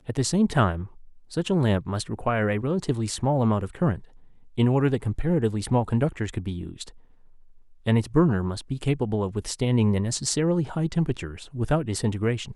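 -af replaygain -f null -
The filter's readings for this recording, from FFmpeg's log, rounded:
track_gain = +6.5 dB
track_peak = 0.309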